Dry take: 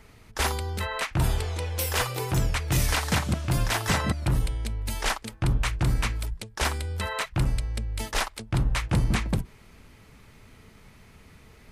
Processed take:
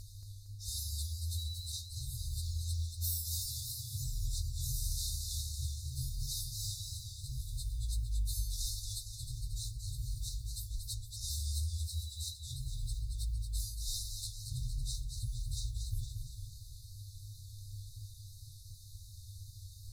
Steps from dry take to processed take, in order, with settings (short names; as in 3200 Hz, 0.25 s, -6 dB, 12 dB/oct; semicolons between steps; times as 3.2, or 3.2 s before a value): block floating point 7-bit; reverse; compressor 8:1, threshold -35 dBFS, peak gain reduction 16 dB; reverse; overloaded stage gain 31 dB; tone controls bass -3 dB, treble +2 dB; in parallel at -6.5 dB: soft clip -36.5 dBFS, distortion -15 dB; on the sum: dynamic EQ 580 Hz, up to -6 dB, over -57 dBFS, Q 3.1; buzz 100 Hz, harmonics 3, -52 dBFS -6 dB/oct; FFT band-reject 130–3600 Hz; notches 60/120/180/240/300/360 Hz; plain phase-vocoder stretch 1.7×; warbling echo 0.23 s, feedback 57%, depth 91 cents, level -6 dB; gain +3 dB